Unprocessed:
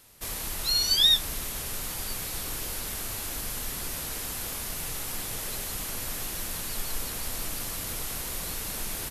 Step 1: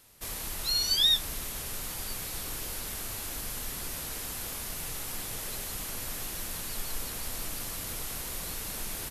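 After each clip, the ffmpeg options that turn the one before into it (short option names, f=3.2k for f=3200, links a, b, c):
-af "acontrast=56,volume=-9dB"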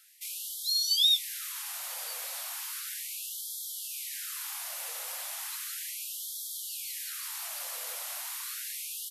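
-af "afftfilt=real='re*gte(b*sr/1024,460*pow(3200/460,0.5+0.5*sin(2*PI*0.35*pts/sr)))':imag='im*gte(b*sr/1024,460*pow(3200/460,0.5+0.5*sin(2*PI*0.35*pts/sr)))':win_size=1024:overlap=0.75"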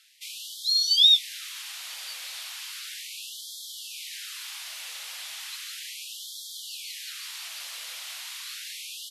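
-af "bandpass=f=3.3k:t=q:w=1.2:csg=0,volume=7dB"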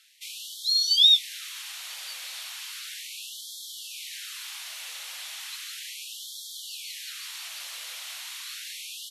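-af "bandreject=f=4.9k:w=24"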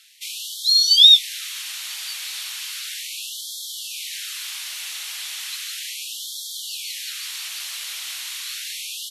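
-af "tiltshelf=f=700:g=-9.5,volume=-1.5dB"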